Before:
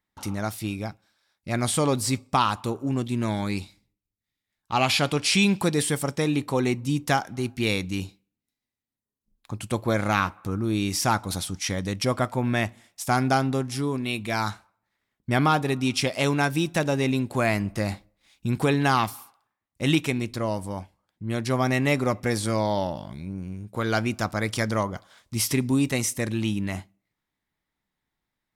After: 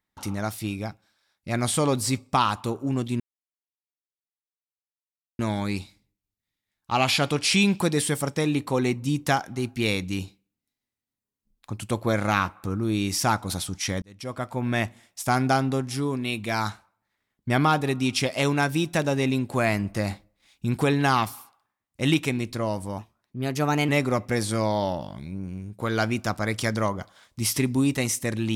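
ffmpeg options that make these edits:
-filter_complex "[0:a]asplit=5[s0][s1][s2][s3][s4];[s0]atrim=end=3.2,asetpts=PTS-STARTPTS,afade=t=out:st=3.196:d=0.004:c=hsin,apad=pad_dur=2.19[s5];[s1]atrim=start=3.2:end=11.83,asetpts=PTS-STARTPTS,afade=t=in:d=0.004:c=hsin,afade=t=out:st=8.626:d=0.004:c=hsin[s6];[s2]atrim=start=11.83:end=20.794,asetpts=PTS-STARTPTS,afade=t=in:d=0.79[s7];[s3]atrim=start=20.79:end=21.83,asetpts=PTS-STARTPTS,asetrate=50715,aresample=44100[s8];[s4]atrim=start=21.826[s9];[s5][s6][s7]concat=n=3:v=0:a=1[s10];[s10][s8]acrossfade=d=0.004:c1=hsin:c2=hsin[s11];[s11][s9]acrossfade=d=0.004:c1=hsin:c2=hsin"

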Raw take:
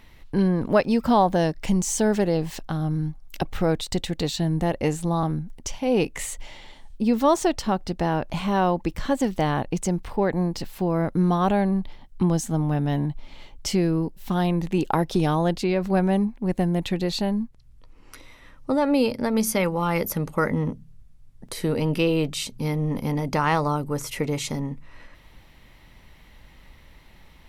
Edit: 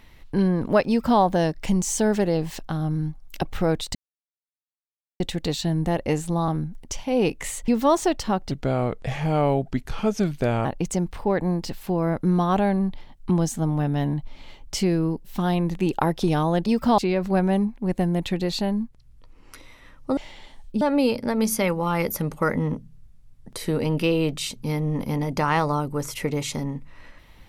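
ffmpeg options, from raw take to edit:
-filter_complex "[0:a]asplit=9[s0][s1][s2][s3][s4][s5][s6][s7][s8];[s0]atrim=end=3.95,asetpts=PTS-STARTPTS,afade=t=out:st=3.946:d=0.004:c=hsin,apad=pad_dur=1.25[s9];[s1]atrim=start=3.95:end=6.432,asetpts=PTS-STARTPTS,afade=t=in:d=0.004:c=hsin[s10];[s2]atrim=start=7.068:end=7.904[s11];[s3]atrim=start=7.9:end=9.57,asetpts=PTS-STARTPTS,asetrate=34398,aresample=44100,atrim=end_sample=94419,asetpts=PTS-STARTPTS[s12];[s4]atrim=start=9.566:end=15.582[s13];[s5]atrim=start=0.878:end=1.202[s14];[s6]atrim=start=15.578:end=18.772[s15];[s7]atrim=start=6.428:end=7.072[s16];[s8]atrim=start=18.768[s17];[s9][s10]concat=n=2:v=0:a=1[s18];[s18][s11]acrossfade=d=0.004:c1=hsin:c2=hsin[s19];[s19][s12]acrossfade=d=0.004:c1=hsin:c2=hsin[s20];[s20][s13]acrossfade=d=0.004:c1=hsin:c2=hsin[s21];[s21][s14]acrossfade=d=0.004:c1=hsin:c2=hsin[s22];[s22][s15]acrossfade=d=0.004:c1=hsin:c2=hsin[s23];[s23][s16]acrossfade=d=0.004:c1=hsin:c2=hsin[s24];[s24][s17]acrossfade=d=0.004:c1=hsin:c2=hsin"

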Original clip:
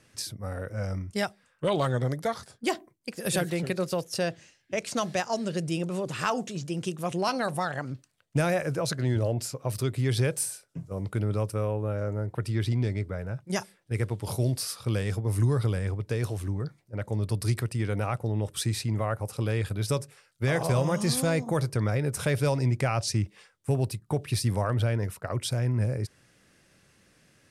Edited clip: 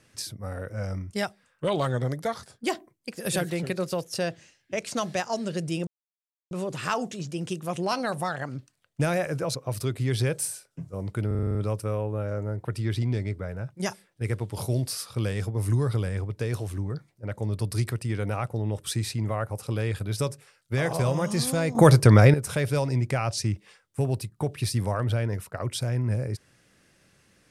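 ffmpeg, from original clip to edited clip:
-filter_complex "[0:a]asplit=12[s0][s1][s2][s3][s4][s5][s6][s7][s8][s9][s10][s11];[s0]atrim=end=5.87,asetpts=PTS-STARTPTS,afade=t=out:st=5.866:d=0.004:c=hsin,apad=pad_dur=0.64[s12];[s1]atrim=start=5.87:end=8.912,asetpts=PTS-STARTPTS,afade=t=in:d=0.004:c=hsin[s13];[s2]atrim=start=9.528:end=11.292[s14];[s3]atrim=start=11.248:end=11.292[s15];[s4]atrim=start=11.248:end=11.292[s16];[s5]atrim=start=11.248:end=11.292[s17];[s6]atrim=start=11.248:end=11.292[s18];[s7]atrim=start=11.248:end=11.292[s19];[s8]atrim=start=11.248:end=11.292[s20];[s9]atrim=start=11.248:end=21.452[s21];[s10]atrim=start=21.448:end=22.042,asetpts=PTS-STARTPTS,volume=3.98[s22];[s11]atrim=start=22.038[s23];[s12][s13]concat=n=2:v=0:a=1[s24];[s24][s14]acrossfade=d=0.004:c1=hsin:c2=hsin[s25];[s25][s15]acrossfade=d=0.004:c1=hsin:c2=hsin[s26];[s26][s16]acrossfade=d=0.004:c1=hsin:c2=hsin[s27];[s27][s17]acrossfade=d=0.004:c1=hsin:c2=hsin[s28];[s28][s18]acrossfade=d=0.004:c1=hsin:c2=hsin[s29];[s29][s19]acrossfade=d=0.004:c1=hsin:c2=hsin[s30];[s30][s20]acrossfade=d=0.004:c1=hsin:c2=hsin[s31];[s31][s21]acrossfade=d=0.004:c1=hsin:c2=hsin[s32];[s32][s22]acrossfade=d=0.004:c1=hsin:c2=hsin[s33];[s33][s23]acrossfade=d=0.004:c1=hsin:c2=hsin"

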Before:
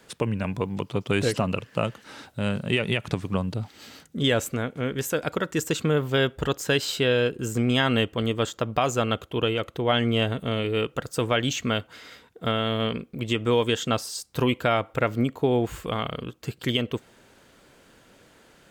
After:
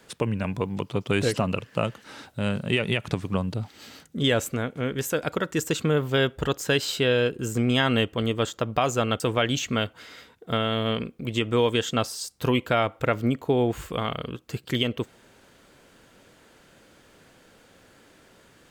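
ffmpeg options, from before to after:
-filter_complex "[0:a]asplit=2[s0][s1];[s0]atrim=end=9.202[s2];[s1]atrim=start=11.138[s3];[s2][s3]acrossfade=d=0.004:c1=hsin:c2=hsin"

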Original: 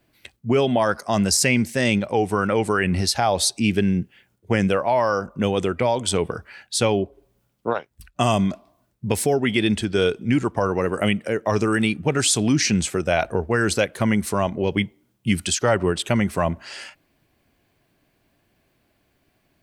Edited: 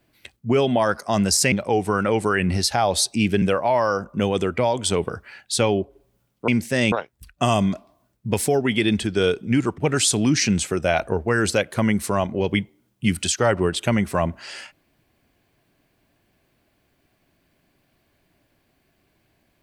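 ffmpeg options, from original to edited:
-filter_complex "[0:a]asplit=6[s0][s1][s2][s3][s4][s5];[s0]atrim=end=1.522[s6];[s1]atrim=start=1.958:end=3.862[s7];[s2]atrim=start=4.638:end=7.702[s8];[s3]atrim=start=1.518:end=1.962[s9];[s4]atrim=start=7.698:end=10.562[s10];[s5]atrim=start=12.008[s11];[s6][s7]acrossfade=d=0.004:c1=hsin:c2=hsin[s12];[s12][s8]acrossfade=d=0.004:c1=hsin:c2=hsin[s13];[s13][s9]acrossfade=d=0.004:c1=hsin:c2=hsin[s14];[s14][s10]acrossfade=d=0.004:c1=hsin:c2=hsin[s15];[s15][s11]acrossfade=d=0.004:c1=hsin:c2=hsin"

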